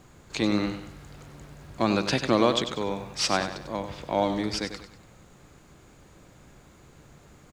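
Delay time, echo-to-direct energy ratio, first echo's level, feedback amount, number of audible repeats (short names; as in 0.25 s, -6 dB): 96 ms, -9.0 dB, -9.5 dB, 39%, 4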